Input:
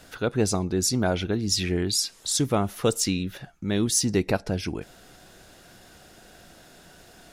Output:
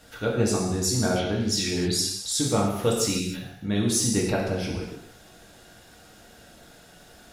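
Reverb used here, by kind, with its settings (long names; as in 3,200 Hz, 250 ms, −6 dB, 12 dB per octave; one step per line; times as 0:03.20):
reverb whose tail is shaped and stops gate 330 ms falling, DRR −3 dB
level −4.5 dB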